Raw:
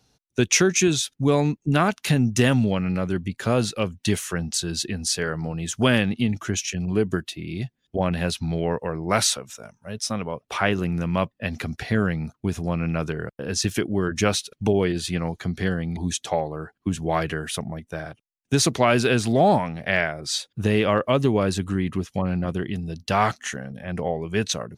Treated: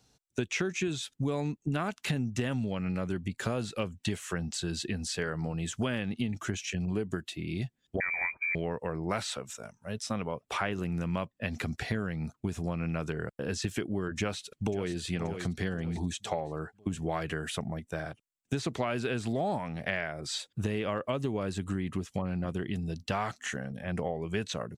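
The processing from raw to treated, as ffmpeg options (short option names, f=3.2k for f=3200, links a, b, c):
-filter_complex "[0:a]asettb=1/sr,asplit=3[a][b][c];[a]atrim=end=8.004[d];[b]atrim=start=8:end=8.55,asetpts=PTS-STARTPTS,afade=t=in:d=0.004:c=qsin,afade=t=out:st=0.546:d=0.004:c=qsin,lowpass=f=2.1k:t=q:w=0.5098,lowpass=f=2.1k:t=q:w=0.6013,lowpass=f=2.1k:t=q:w=0.9,lowpass=f=2.1k:t=q:w=2.563,afreqshift=-2500[e];[c]atrim=start=8.546[f];[d][e]acrossfade=d=0.004:c1=hsin:c2=qsin[g];[g][f]acrossfade=d=0.004:c1=qsin:c2=hsin,asplit=2[h][i];[i]afade=t=in:st=14.19:d=0.01,afade=t=out:st=14.92:d=0.01,aecho=0:1:530|1060|1590|2120:0.223872|0.0895488|0.0358195|0.0143278[j];[h][j]amix=inputs=2:normalize=0,acrossover=split=3700[k][l];[l]acompressor=threshold=-38dB:ratio=4:attack=1:release=60[m];[k][m]amix=inputs=2:normalize=0,equalizer=f=7.7k:t=o:w=0.24:g=8.5,acompressor=threshold=-25dB:ratio=6,volume=-3dB"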